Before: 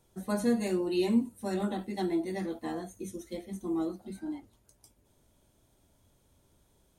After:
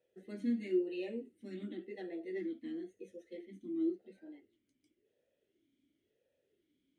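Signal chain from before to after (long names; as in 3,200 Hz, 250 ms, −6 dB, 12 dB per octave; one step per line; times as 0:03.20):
formant filter swept between two vowels e-i 0.95 Hz
level +2.5 dB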